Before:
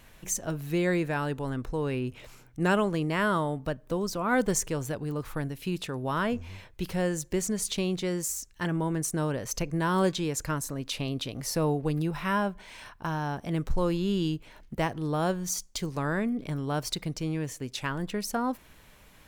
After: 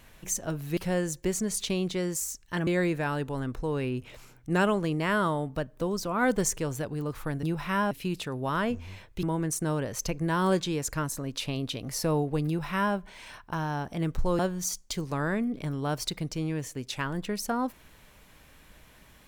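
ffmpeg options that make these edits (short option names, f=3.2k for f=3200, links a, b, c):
-filter_complex "[0:a]asplit=7[a][b][c][d][e][f][g];[a]atrim=end=0.772[h];[b]atrim=start=6.848:end=8.752[i];[c]atrim=start=0.768:end=5.532[j];[d]atrim=start=11.988:end=12.472[k];[e]atrim=start=5.528:end=6.852[l];[f]atrim=start=8.748:end=13.912[m];[g]atrim=start=15.238[n];[h][i]acrossfade=d=0.004:c1=hsin:c2=hsin[o];[o][j]acrossfade=d=0.004:c1=hsin:c2=hsin[p];[p][k]acrossfade=d=0.004:c1=hsin:c2=hsin[q];[q][l]acrossfade=d=0.004:c1=hsin:c2=hsin[r];[r][m]acrossfade=d=0.004:c1=hsin:c2=hsin[s];[s][n]acrossfade=d=0.004:c1=hsin:c2=hsin"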